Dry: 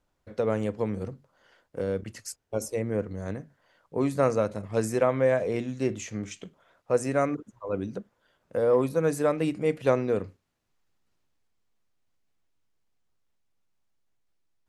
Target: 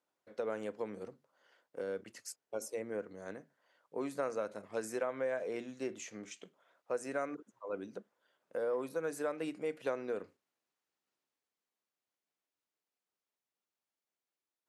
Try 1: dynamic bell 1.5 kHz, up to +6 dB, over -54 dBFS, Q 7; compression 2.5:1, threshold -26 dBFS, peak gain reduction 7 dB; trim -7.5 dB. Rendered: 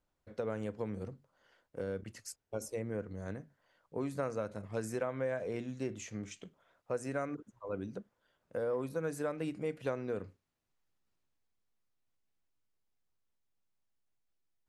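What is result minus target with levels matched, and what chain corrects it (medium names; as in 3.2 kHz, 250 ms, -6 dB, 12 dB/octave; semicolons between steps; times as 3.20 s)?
250 Hz band +3.0 dB
dynamic bell 1.5 kHz, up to +6 dB, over -54 dBFS, Q 7; high-pass 310 Hz 12 dB/octave; compression 2.5:1, threshold -26 dBFS, peak gain reduction 6 dB; trim -7.5 dB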